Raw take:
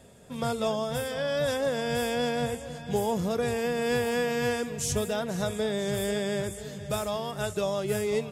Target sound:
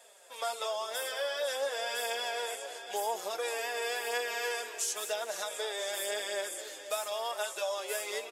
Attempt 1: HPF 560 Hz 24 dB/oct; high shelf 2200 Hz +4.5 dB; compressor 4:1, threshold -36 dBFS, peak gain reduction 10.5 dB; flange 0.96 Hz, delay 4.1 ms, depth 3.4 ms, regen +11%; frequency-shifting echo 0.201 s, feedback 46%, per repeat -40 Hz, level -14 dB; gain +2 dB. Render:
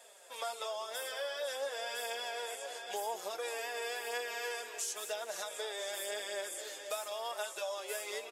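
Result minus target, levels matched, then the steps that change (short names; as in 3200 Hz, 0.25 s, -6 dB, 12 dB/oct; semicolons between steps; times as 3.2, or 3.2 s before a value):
compressor: peak gain reduction +5 dB
change: compressor 4:1, threshold -29.5 dBFS, peak gain reduction 5.5 dB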